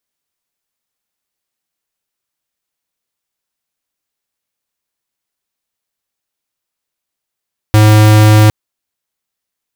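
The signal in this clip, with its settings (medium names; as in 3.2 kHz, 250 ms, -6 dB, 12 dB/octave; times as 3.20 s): tone square 107 Hz -5.5 dBFS 0.76 s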